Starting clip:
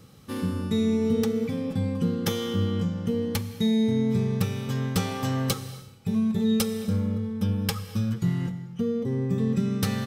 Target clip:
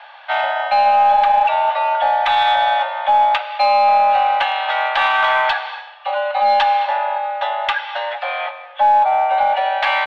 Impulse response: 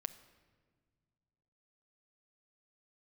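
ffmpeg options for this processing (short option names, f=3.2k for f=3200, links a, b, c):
-filter_complex "[0:a]atempo=1,highpass=f=380:t=q:w=0.5412,highpass=f=380:t=q:w=1.307,lowpass=f=3k:t=q:w=0.5176,lowpass=f=3k:t=q:w=0.7071,lowpass=f=3k:t=q:w=1.932,afreqshift=370,asplit=2[a][b];[b]aeval=exprs='clip(val(0),-1,0.0211)':c=same,volume=-11dB[c];[a][c]amix=inputs=2:normalize=0,alimiter=level_in=23.5dB:limit=-1dB:release=50:level=0:latency=1,volume=-5.5dB"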